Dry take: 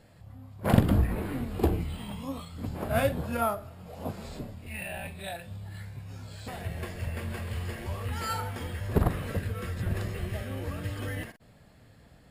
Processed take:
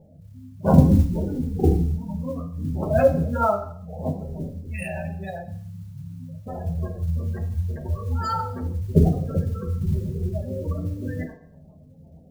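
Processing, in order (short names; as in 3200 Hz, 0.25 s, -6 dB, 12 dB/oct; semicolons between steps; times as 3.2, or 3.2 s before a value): Wiener smoothing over 15 samples; spectral gate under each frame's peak -15 dB strong; high shelf 3400 Hz +10 dB; notches 60/120/180 Hz; modulation noise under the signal 29 dB; on a send: reverb RT60 0.55 s, pre-delay 3 ms, DRR 2 dB; on the sum: gain +4 dB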